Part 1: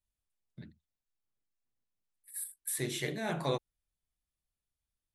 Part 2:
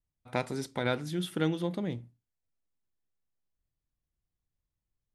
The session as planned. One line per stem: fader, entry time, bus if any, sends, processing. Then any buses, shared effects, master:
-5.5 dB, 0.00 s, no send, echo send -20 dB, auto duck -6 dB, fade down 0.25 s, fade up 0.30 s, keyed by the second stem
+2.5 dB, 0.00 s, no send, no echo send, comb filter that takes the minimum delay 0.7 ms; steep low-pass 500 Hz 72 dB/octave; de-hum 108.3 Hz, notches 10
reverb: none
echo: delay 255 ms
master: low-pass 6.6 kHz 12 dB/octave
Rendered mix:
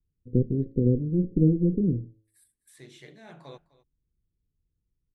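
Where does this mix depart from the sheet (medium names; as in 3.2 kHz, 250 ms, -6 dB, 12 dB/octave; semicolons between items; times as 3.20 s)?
stem 1 -5.5 dB -> -13.0 dB; stem 2 +2.5 dB -> +9.5 dB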